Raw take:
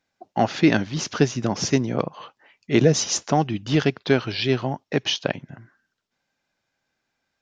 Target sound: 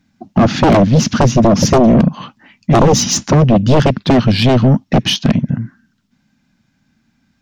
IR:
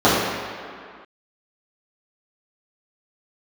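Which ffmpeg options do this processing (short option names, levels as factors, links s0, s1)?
-af "aeval=exprs='0.668*sin(PI/2*2*val(0)/0.668)':c=same,lowshelf=f=320:t=q:w=3:g=12,acontrast=29,volume=0.562"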